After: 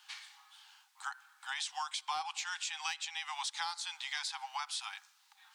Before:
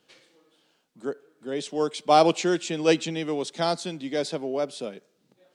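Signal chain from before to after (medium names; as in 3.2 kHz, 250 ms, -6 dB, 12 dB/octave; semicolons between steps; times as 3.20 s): Chebyshev high-pass 780 Hz, order 10; in parallel at -4.5 dB: saturation -23.5 dBFS, distortion -10 dB; on the sum: compression 12:1, threshold -40 dBFS, peak gain reduction 23 dB; trim +5 dB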